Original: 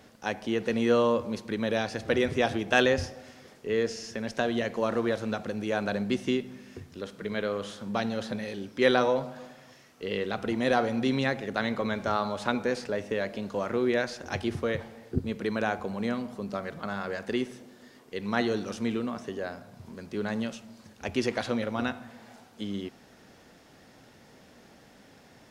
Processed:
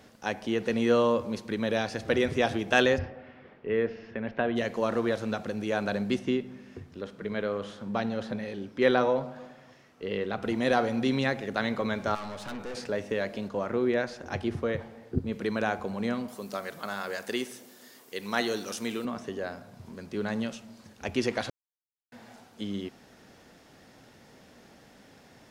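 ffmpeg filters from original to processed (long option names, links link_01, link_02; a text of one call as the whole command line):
ffmpeg -i in.wav -filter_complex "[0:a]asplit=3[link_01][link_02][link_03];[link_01]afade=type=out:start_time=2.97:duration=0.02[link_04];[link_02]lowpass=frequency=2700:width=0.5412,lowpass=frequency=2700:width=1.3066,afade=type=in:start_time=2.97:duration=0.02,afade=type=out:start_time=4.55:duration=0.02[link_05];[link_03]afade=type=in:start_time=4.55:duration=0.02[link_06];[link_04][link_05][link_06]amix=inputs=3:normalize=0,asettb=1/sr,asplit=3[link_07][link_08][link_09];[link_07]atrim=end=6.194[link_10];[link_08]atrim=start=6.19:end=10.43,asetpts=PTS-STARTPTS,afade=type=in:duration=0.004:curve=qsin,afade=type=out:start_time=4.236:duration=0.004:curve=qsin,highshelf=frequency=4100:gain=-11[link_11];[link_09]atrim=start=10.426[link_12];[link_10][link_11]acrossfade=duration=0.004:curve1=hsin:curve2=qsin[link_13];[link_13][link_12]acrossfade=duration=0.004:curve1=qsin:curve2=hsin,asettb=1/sr,asplit=3[link_14][link_15][link_16];[link_14]atrim=end=12.154[link_17];[link_15]atrim=start=12.15:end=12.75,asetpts=PTS-STARTPTS,afade=type=in:duration=0.004:curve=qsin,afade=type=out:start_time=0.596:duration=0.004:curve=qsin,aeval=exprs='(tanh(56.2*val(0)+0.5)-tanh(0.5))/56.2':channel_layout=same[link_18];[link_16]atrim=start=12.746[link_19];[link_17][link_18]acrossfade=duration=0.004:curve1=hsin:curve2=qsin[link_20];[link_20][link_19]acrossfade=duration=0.004:curve1=qsin:curve2=hsin,asettb=1/sr,asplit=3[link_21][link_22][link_23];[link_21]atrim=end=13.484[link_24];[link_22]atrim=start=13.48:end=15.33,asetpts=PTS-STARTPTS,afade=type=in:duration=0.004:curve=qsin,afade=type=out:start_time=1.846:duration=0.004:curve=qsin,highshelf=frequency=2700:gain=-7.5[link_25];[link_23]atrim=start=15.326[link_26];[link_24][link_25]acrossfade=duration=0.004:curve1=hsin:curve2=qsin[link_27];[link_27][link_26]acrossfade=duration=0.004:curve1=qsin:curve2=hsin,asettb=1/sr,asplit=3[link_28][link_29][link_30];[link_28]atrim=end=16.284[link_31];[link_29]atrim=start=16.28:end=19.05,asetpts=PTS-STARTPTS,afade=type=in:duration=0.004:curve=qsin,afade=type=out:start_time=2.766:duration=0.004:curve=qsin,aemphasis=mode=production:type=bsi[link_32];[link_30]atrim=start=19.046[link_33];[link_31][link_32]acrossfade=duration=0.004:curve1=hsin:curve2=qsin[link_34];[link_34][link_33]acrossfade=duration=0.004:curve1=qsin:curve2=hsin,asplit=3[link_35][link_36][link_37];[link_35]atrim=end=21.5,asetpts=PTS-STARTPTS,afade=type=out:start_time=21.496:duration=0.004:curve=hsin[link_38];[link_36]atrim=start=21.5:end=22.12,asetpts=PTS-STARTPTS,volume=0[link_39];[link_37]atrim=start=22.12,asetpts=PTS-STARTPTS,afade=type=in:duration=0.004:curve=hsin[link_40];[link_38][link_39][link_40]concat=n=3:v=0:a=1" out.wav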